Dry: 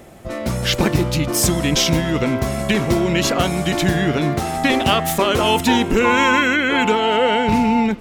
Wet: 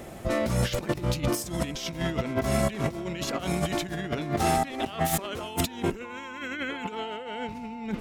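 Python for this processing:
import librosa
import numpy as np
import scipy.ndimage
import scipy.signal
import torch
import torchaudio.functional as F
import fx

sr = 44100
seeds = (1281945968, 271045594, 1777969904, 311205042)

y = fx.over_compress(x, sr, threshold_db=-23.0, ratio=-0.5)
y = y * 10.0 ** (-5.5 / 20.0)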